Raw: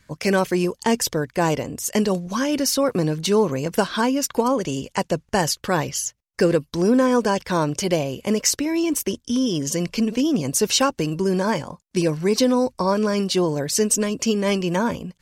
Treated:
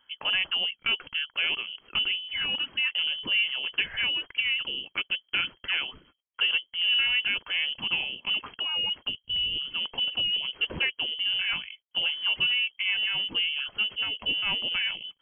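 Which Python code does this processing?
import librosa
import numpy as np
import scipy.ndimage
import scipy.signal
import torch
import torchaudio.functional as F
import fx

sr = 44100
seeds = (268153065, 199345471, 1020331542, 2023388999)

y = fx.diode_clip(x, sr, knee_db=-6.5)
y = fx.freq_invert(y, sr, carrier_hz=3200)
y = y * librosa.db_to_amplitude(-7.0)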